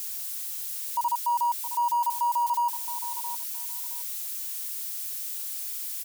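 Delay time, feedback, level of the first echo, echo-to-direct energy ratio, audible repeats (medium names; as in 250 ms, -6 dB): 668 ms, 17%, -11.5 dB, -11.5 dB, 2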